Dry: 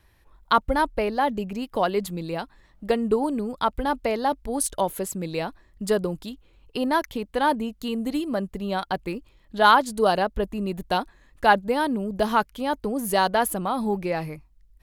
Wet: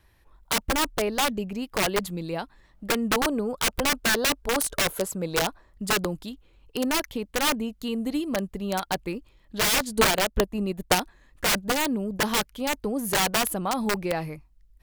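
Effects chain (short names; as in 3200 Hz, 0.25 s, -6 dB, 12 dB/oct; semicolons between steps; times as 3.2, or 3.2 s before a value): 3.22–5.76 spectral gain 430–1600 Hz +6 dB; wrapped overs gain 16 dB; 9.93–10.95 transient shaper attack +7 dB, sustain -5 dB; gain -1 dB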